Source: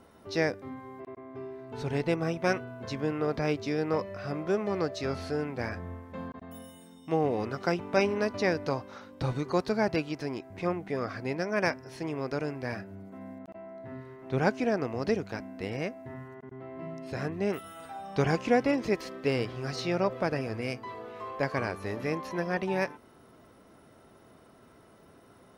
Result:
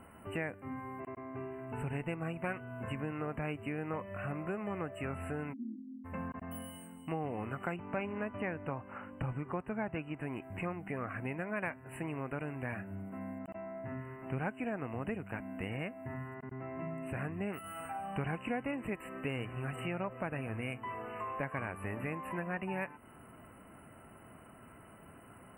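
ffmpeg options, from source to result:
-filter_complex "[0:a]asplit=3[a][b][c];[a]afade=t=out:st=5.52:d=0.02[d];[b]asuperpass=centerf=260:order=12:qfactor=2.3,afade=t=in:st=5.52:d=0.02,afade=t=out:st=6.04:d=0.02[e];[c]afade=t=in:st=6.04:d=0.02[f];[d][e][f]amix=inputs=3:normalize=0,asettb=1/sr,asplit=3[g][h][i];[g]atrim=end=7.764[j];[h]atrim=start=7.76:end=10.23,asetpts=PTS-STARTPTS,afade=t=in:d=0.004:c=qsin,afade=t=out:st=2.466:d=0.004:c=qsin,lowpass=f=2.8k:p=1[k];[i]atrim=start=10.226[l];[j][k]acrossfade=d=0.004:c1=hsin:c2=qsin[m];[m][l]acrossfade=d=0.004:c1=qsin:c2=hsin,afftfilt=real='re*(1-between(b*sr/4096,3000,7500))':imag='im*(1-between(b*sr/4096,3000,7500))':win_size=4096:overlap=0.75,equalizer=f=430:t=o:w=1.1:g=-7.5,acompressor=threshold=-41dB:ratio=3,volume=4dB"

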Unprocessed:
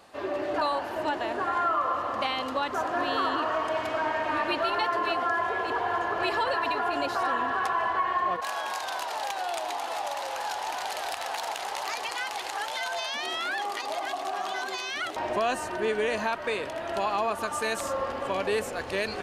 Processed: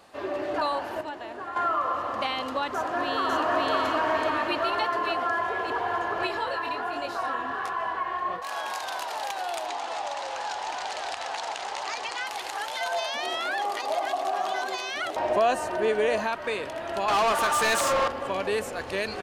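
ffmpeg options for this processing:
-filter_complex "[0:a]asplit=2[a][b];[b]afade=t=in:st=2.73:d=0.01,afade=t=out:st=3.74:d=0.01,aecho=0:1:550|1100|1650|2200|2750|3300:1|0.4|0.16|0.064|0.0256|0.01024[c];[a][c]amix=inputs=2:normalize=0,asettb=1/sr,asplit=3[d][e][f];[d]atrim=end=6.274[g];[e]atrim=start=6.27:end=8.51,asetpts=PTS-STARTPTS,afade=t=in:d=0.004:c=qsin,afade=t=out:st=2.236:d=0.004:c=qsin,flanger=delay=19.5:depth=7.2:speed=1.3[h];[f]atrim=start=8.506[i];[g][h]acrossfade=d=0.004:c1=hsin:c2=qsin[j];[j][i]acrossfade=d=0.004:c1=qsin:c2=hsin,asettb=1/sr,asplit=3[k][l][m];[k]atrim=end=9.664[n];[l]atrim=start=9.66:end=12.27,asetpts=PTS-STARTPTS,afade=t=in:d=0.004:c=qsin,afade=t=out:st=2.606:d=0.004:c=qsin,lowpass=f=8.1k:w=0.5412,lowpass=f=8.1k:w=1.3066[o];[m]atrim=start=12.266[p];[n][o]acrossfade=d=0.004:c1=hsin:c2=qsin[q];[q][p]acrossfade=d=0.004:c1=qsin:c2=hsin,asettb=1/sr,asplit=3[r][s][t];[r]atrim=end=12.804[u];[s]atrim=start=12.8:end=16.21,asetpts=PTS-STARTPTS,afade=t=in:d=0.004:c=qsin,afade=t=out:st=3.406:d=0.004:c=qsin,equalizer=f=610:w=1.5:g=6.5[v];[t]atrim=start=16.206[w];[u][v]acrossfade=d=0.004:c1=hsin:c2=qsin[x];[x][w]acrossfade=d=0.004:c1=qsin:c2=hsin,asettb=1/sr,asplit=3[y][z][aa];[y]atrim=end=17.084[ab];[z]atrim=start=17.08:end=18.08,asetpts=PTS-STARTPTS,afade=t=in:d=0.004:c=qsin,afade=t=out:st=0.996:d=0.004:c=qsin,asplit=2[ac][ad];[ad]highpass=f=720:p=1,volume=22dB,asoftclip=type=tanh:threshold=-16.5dB[ae];[ac][ae]amix=inputs=2:normalize=0,lowpass=f=7.6k:p=1,volume=-6dB[af];[aa]atrim=start=18.076[ag];[ab][af]acrossfade=d=0.004:c1=hsin:c2=qsin[ah];[ah][ag]acrossfade=d=0.004:c1=qsin:c2=hsin,asplit=3[ai][aj][ak];[ai]atrim=end=1.012[al];[aj]atrim=start=1.008:end=1.562,asetpts=PTS-STARTPTS,volume=-7.5dB[am];[ak]atrim=start=1.558[an];[al][am]acrossfade=d=0.004:c1=hsin:c2=hsin[ao];[ao][an]acrossfade=d=0.004:c1=hsin:c2=hsin"

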